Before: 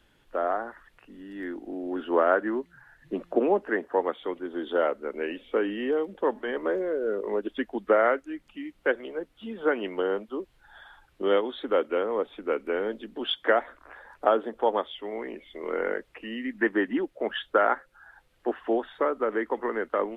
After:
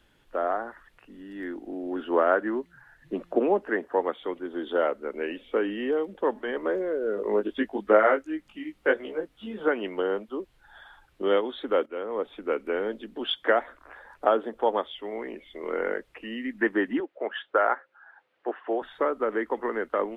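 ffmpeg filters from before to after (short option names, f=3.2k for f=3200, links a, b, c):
-filter_complex "[0:a]asettb=1/sr,asplit=3[a][b][c];[a]atrim=end=7.154[d];[b]atrim=start=7.15:end=9.68,asetpts=PTS-STARTPTS,afade=t=in:d=0.004:c=qsin,afade=t=out:st=2.526:d=0.004:c=qsin,asplit=2[e][f];[f]adelay=19,volume=-3dB[g];[e][g]amix=inputs=2:normalize=0,atrim=end_sample=111573[h];[c]atrim=start=9.676[i];[d][h]acrossfade=d=0.004:c1=hsin:c2=qsin[j];[j][i]acrossfade=d=0.004:c1=qsin:c2=hsin,asettb=1/sr,asplit=3[k][l][m];[k]atrim=end=17.004[n];[l]atrim=start=17:end=18.82,asetpts=PTS-STARTPTS,afade=t=in:d=0.004:c=qsin,afade=t=out:st=1.816:d=0.004:c=qsin,highpass=390,lowpass=2.6k[o];[m]atrim=start=18.816[p];[n][o]acrossfade=d=0.004:c1=hsin:c2=qsin[q];[q][p]acrossfade=d=0.004:c1=qsin:c2=hsin,asplit=2[r][s];[r]atrim=end=11.86,asetpts=PTS-STARTPTS,afade=t=out:st=11.856:d=0.004:c=hsin:silence=0.237137[t];[s]atrim=start=11.86,asetpts=PTS-STARTPTS,afade=t=in:d=0.44:silence=0.237137[u];[t][u]concat=n=2:v=0:a=1"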